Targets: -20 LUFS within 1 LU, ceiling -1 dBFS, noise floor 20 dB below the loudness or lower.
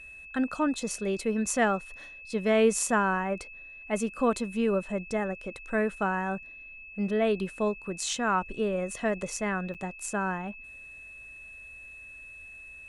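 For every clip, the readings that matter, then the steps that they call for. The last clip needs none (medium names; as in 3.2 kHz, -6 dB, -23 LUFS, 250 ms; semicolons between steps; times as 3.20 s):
dropouts 1; longest dropout 7.3 ms; steady tone 2.6 kHz; tone level -44 dBFS; loudness -29.0 LUFS; peak level -12.5 dBFS; loudness target -20.0 LUFS
-> interpolate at 9.74 s, 7.3 ms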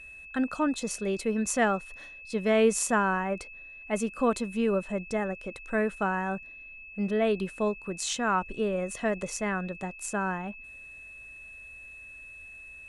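dropouts 0; steady tone 2.6 kHz; tone level -44 dBFS
-> band-stop 2.6 kHz, Q 30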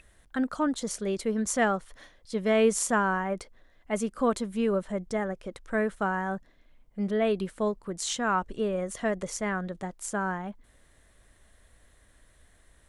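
steady tone not found; loudness -29.5 LUFS; peak level -12.0 dBFS; loudness target -20.0 LUFS
-> trim +9.5 dB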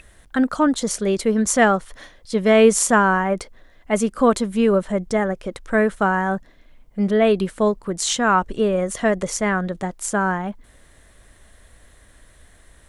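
loudness -20.0 LUFS; peak level -2.5 dBFS; noise floor -52 dBFS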